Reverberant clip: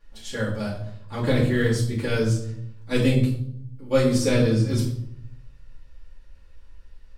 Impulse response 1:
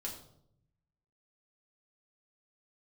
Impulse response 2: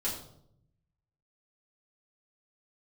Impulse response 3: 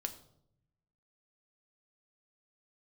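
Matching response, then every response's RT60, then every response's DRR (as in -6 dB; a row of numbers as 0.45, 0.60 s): 2; 0.70, 0.70, 0.70 s; -3.0, -8.5, 6.5 dB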